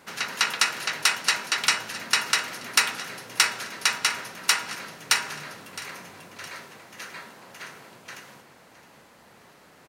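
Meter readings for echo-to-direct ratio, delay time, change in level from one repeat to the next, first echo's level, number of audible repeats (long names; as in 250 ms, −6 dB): −15.5 dB, 664 ms, −7.0 dB, −16.5 dB, 2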